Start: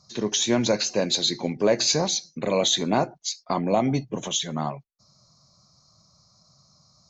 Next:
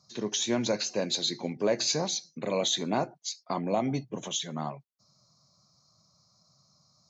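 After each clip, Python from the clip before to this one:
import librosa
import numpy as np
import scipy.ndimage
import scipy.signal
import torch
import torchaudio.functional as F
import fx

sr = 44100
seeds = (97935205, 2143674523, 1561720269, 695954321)

y = scipy.signal.sosfilt(scipy.signal.butter(2, 95.0, 'highpass', fs=sr, output='sos'), x)
y = F.gain(torch.from_numpy(y), -6.0).numpy()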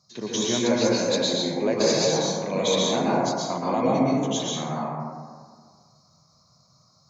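y = fx.rev_plate(x, sr, seeds[0], rt60_s=1.8, hf_ratio=0.3, predelay_ms=105, drr_db=-6.5)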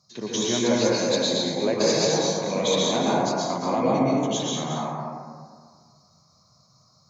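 y = x + 10.0 ** (-8.5 / 20.0) * np.pad(x, (int(224 * sr / 1000.0), 0))[:len(x)]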